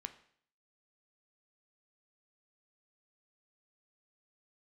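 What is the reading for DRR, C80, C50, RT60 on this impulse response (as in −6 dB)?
8.5 dB, 17.0 dB, 14.0 dB, 0.60 s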